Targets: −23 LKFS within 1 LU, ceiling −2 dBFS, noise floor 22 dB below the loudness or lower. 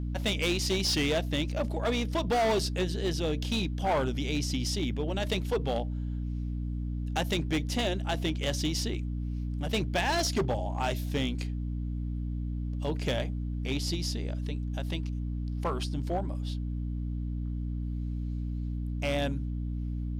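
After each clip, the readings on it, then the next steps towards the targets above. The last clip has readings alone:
share of clipped samples 2.1%; peaks flattened at −23.0 dBFS; mains hum 60 Hz; hum harmonics up to 300 Hz; level of the hum −31 dBFS; integrated loudness −31.5 LKFS; sample peak −23.0 dBFS; target loudness −23.0 LKFS
→ clipped peaks rebuilt −23 dBFS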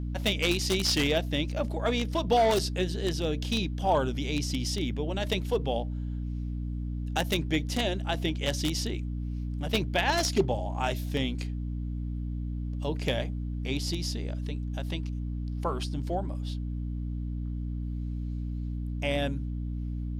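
share of clipped samples 0.0%; mains hum 60 Hz; hum harmonics up to 300 Hz; level of the hum −30 dBFS
→ mains-hum notches 60/120/180/240/300 Hz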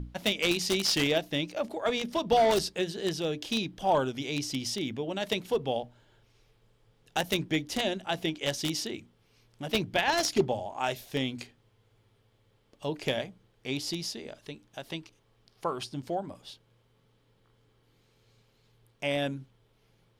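mains hum none found; integrated loudness −30.5 LKFS; sample peak −12.5 dBFS; target loudness −23.0 LKFS
→ level +7.5 dB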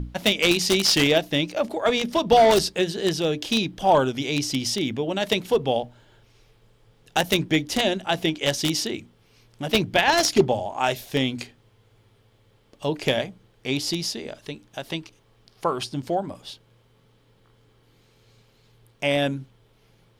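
integrated loudness −23.0 LKFS; sample peak −5.0 dBFS; background noise floor −60 dBFS

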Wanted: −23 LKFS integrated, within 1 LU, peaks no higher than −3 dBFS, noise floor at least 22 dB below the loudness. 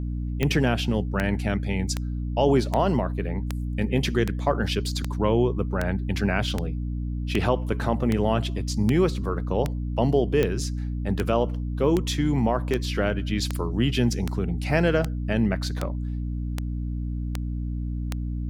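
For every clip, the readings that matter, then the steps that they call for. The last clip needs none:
number of clicks 24; mains hum 60 Hz; hum harmonics up to 300 Hz; level of the hum −26 dBFS; integrated loudness −25.5 LKFS; sample peak −7.5 dBFS; target loudness −23.0 LKFS
→ click removal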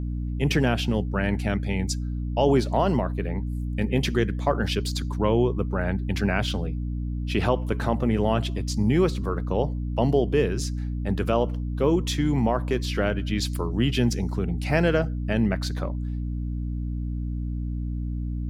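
number of clicks 0; mains hum 60 Hz; hum harmonics up to 300 Hz; level of the hum −26 dBFS
→ mains-hum notches 60/120/180/240/300 Hz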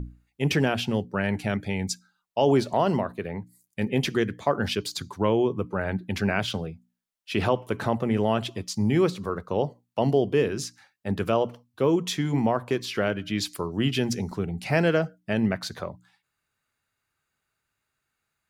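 mains hum none found; integrated loudness −26.5 LKFS; sample peak −8.0 dBFS; target loudness −23.0 LKFS
→ level +3.5 dB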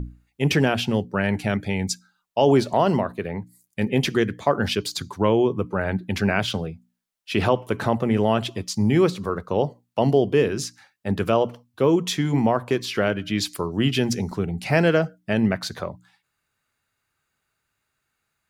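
integrated loudness −23.0 LKFS; sample peak −4.5 dBFS; background noise floor −78 dBFS

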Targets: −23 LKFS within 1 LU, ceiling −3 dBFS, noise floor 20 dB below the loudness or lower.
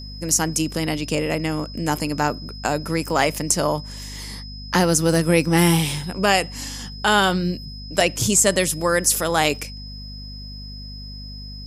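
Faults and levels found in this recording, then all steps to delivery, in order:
mains hum 50 Hz; hum harmonics up to 250 Hz; level of the hum −34 dBFS; interfering tone 5,100 Hz; level of the tone −38 dBFS; integrated loudness −20.5 LKFS; sample peak −2.0 dBFS; target loudness −23.0 LKFS
→ mains-hum notches 50/100/150/200/250 Hz
notch filter 5,100 Hz, Q 30
level −2.5 dB

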